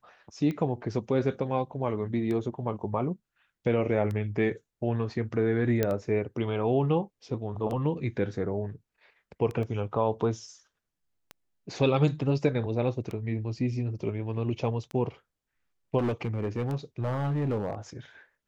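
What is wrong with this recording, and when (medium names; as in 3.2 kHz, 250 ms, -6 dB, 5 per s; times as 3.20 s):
tick 33 1/3 rpm -23 dBFS
5.83 s: pop -12 dBFS
9.63 s: dropout 2.1 ms
15.98–17.75 s: clipped -24 dBFS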